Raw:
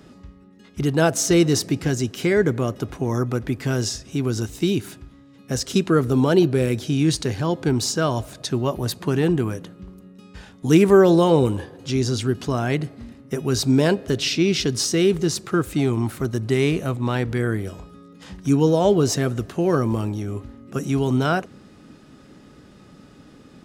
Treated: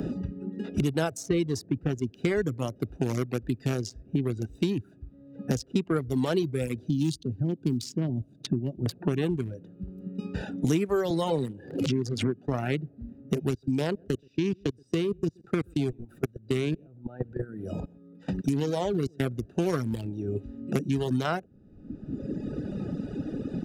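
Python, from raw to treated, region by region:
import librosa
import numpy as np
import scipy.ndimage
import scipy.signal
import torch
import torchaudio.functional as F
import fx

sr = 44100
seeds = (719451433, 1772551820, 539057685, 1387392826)

y = fx.chain(x, sr, fx.law_mismatch(coded='A'),
    fx.highpass(hz=100.0, slope=12),
    fx.band_shelf(hz=1000.0, db=-13.5, octaves=2.7), at=(6.89, 8.86))
y = fx.chain(y, sr, fx.highpass(hz=120.0, slope=24),
    fx.pre_swell(db_per_s=40.0), at=(11.1, 12.48))
y = fx.chain(y, sr, fx.highpass(hz=46.0, slope=12),
    fx.level_steps(step_db=21),
    fx.echo_single(ms=126, db=-19.5), at=(13.5, 19.2))
y = fx.wiener(y, sr, points=41)
y = fx.dereverb_blind(y, sr, rt60_s=1.3)
y = fx.band_squash(y, sr, depth_pct=100)
y = y * 10.0 ** (-4.0 / 20.0)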